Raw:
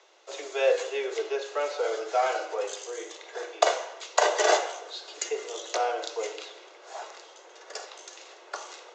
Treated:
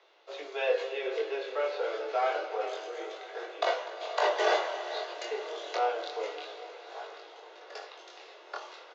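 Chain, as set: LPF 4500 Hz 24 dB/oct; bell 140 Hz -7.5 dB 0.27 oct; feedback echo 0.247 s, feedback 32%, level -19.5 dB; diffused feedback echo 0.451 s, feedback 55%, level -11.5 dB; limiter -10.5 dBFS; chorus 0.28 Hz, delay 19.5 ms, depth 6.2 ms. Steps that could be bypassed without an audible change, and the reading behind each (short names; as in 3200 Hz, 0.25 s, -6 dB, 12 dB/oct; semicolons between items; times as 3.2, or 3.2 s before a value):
bell 140 Hz: input band starts at 300 Hz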